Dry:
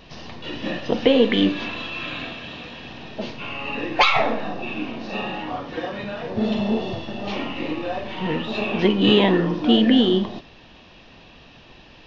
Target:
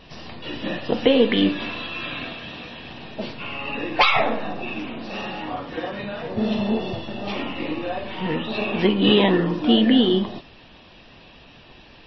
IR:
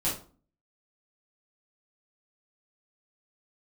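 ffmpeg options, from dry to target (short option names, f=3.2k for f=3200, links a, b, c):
-filter_complex "[0:a]asettb=1/sr,asplit=3[a][b][c];[a]atrim=end=4.794[d];[b]atrim=start=4.79:end=5.4,asetpts=PTS-STARTPTS,afade=t=in:d=0.004:c=qsin,afade=t=out:st=0.606:d=0.004:c=qsin,volume=26.5dB,asoftclip=hard,volume=-26.5dB[e];[c]atrim=start=5.396[f];[d][e]acrossfade=d=0.004:c1=hsin:c2=qsin[g];[g][f]acrossfade=d=0.004:c1=qsin:c2=hsin" -ar 22050 -c:a libmp3lame -b:a 24k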